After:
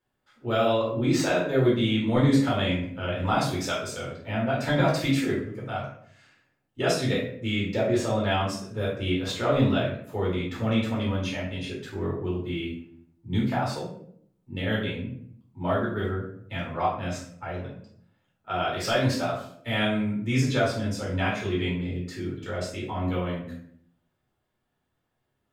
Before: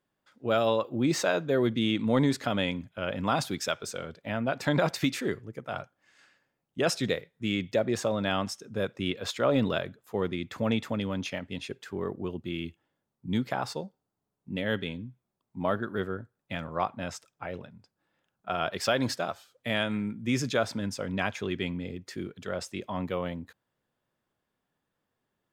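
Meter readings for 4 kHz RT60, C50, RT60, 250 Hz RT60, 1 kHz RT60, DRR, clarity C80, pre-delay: 0.40 s, 4.0 dB, 0.65 s, 0.85 s, 0.55 s, −6.0 dB, 8.5 dB, 3 ms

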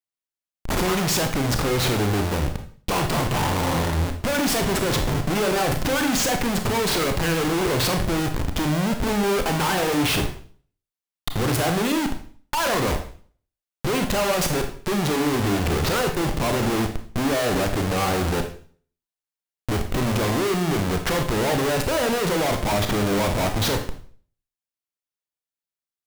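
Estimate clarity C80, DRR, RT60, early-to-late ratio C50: 13.0 dB, 5.0 dB, 0.45 s, 8.5 dB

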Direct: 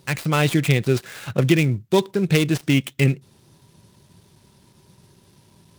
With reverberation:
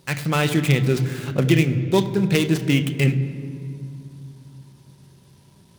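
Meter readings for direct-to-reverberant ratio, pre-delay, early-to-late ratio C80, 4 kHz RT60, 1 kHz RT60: 9.0 dB, 3 ms, 12.5 dB, 1.5 s, 2.3 s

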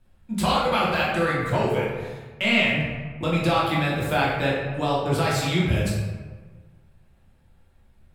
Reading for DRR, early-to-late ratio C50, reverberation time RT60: −7.0 dB, 0.0 dB, 1.4 s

